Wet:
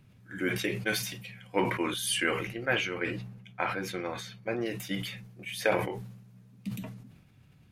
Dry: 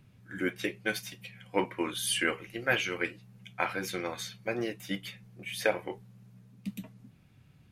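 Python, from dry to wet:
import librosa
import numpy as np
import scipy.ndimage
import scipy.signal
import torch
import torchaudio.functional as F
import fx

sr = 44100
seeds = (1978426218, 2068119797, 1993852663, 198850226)

y = fx.high_shelf(x, sr, hz=3600.0, db=-10.5, at=(2.47, 4.66))
y = fx.sustainer(y, sr, db_per_s=57.0)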